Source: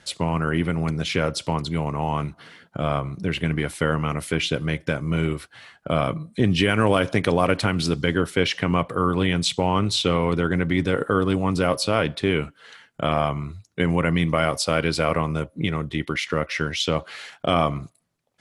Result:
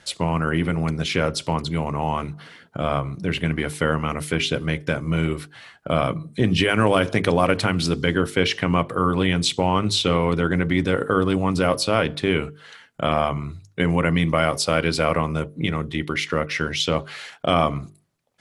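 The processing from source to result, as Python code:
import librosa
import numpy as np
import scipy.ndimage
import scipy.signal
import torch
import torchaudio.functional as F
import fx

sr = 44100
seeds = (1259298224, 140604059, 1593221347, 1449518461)

y = fx.hum_notches(x, sr, base_hz=50, count=9)
y = y * librosa.db_to_amplitude(1.5)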